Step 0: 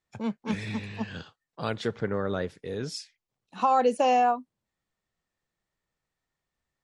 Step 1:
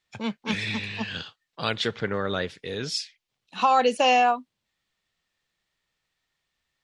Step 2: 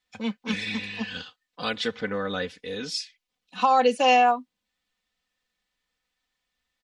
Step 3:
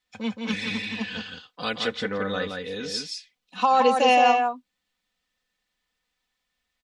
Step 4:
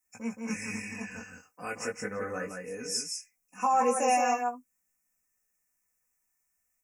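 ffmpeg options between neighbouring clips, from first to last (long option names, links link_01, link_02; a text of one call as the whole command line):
ffmpeg -i in.wav -af "equalizer=frequency=3300:width=0.6:gain=12.5" out.wav
ffmpeg -i in.wav -af "aecho=1:1:4:0.79,volume=-3.5dB" out.wav
ffmpeg -i in.wav -af "aecho=1:1:171:0.596" out.wav
ffmpeg -i in.wav -af "asuperstop=centerf=3700:order=12:qfactor=1.5,aexciter=amount=6.5:drive=5.6:freq=6200,flanger=delay=16.5:depth=4.7:speed=0.36,volume=-4dB" out.wav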